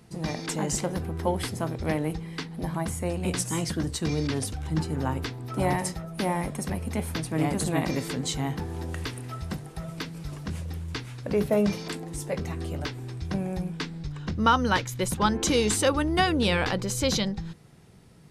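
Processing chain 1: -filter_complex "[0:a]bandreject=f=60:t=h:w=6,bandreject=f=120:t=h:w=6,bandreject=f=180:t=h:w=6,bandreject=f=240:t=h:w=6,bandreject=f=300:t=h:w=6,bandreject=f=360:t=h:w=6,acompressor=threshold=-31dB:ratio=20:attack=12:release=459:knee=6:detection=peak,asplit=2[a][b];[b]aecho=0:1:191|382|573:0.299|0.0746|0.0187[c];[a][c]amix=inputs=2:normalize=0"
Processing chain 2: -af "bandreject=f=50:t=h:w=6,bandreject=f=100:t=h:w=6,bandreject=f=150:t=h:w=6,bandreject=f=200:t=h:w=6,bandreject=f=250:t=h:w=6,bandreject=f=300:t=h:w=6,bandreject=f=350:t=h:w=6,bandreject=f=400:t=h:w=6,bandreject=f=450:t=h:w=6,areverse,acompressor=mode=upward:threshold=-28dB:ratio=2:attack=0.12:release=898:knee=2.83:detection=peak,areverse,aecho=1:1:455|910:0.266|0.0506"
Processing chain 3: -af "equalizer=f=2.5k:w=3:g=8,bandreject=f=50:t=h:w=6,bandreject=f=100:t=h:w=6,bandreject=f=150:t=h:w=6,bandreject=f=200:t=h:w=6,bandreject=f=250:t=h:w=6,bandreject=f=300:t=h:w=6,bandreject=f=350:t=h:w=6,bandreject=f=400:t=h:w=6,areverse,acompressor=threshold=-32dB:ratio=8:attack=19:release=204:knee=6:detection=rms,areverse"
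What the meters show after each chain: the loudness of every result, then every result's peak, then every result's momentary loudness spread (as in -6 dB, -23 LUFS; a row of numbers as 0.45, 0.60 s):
-37.0, -28.5, -36.5 LUFS; -20.5, -8.5, -21.0 dBFS; 4, 12, 4 LU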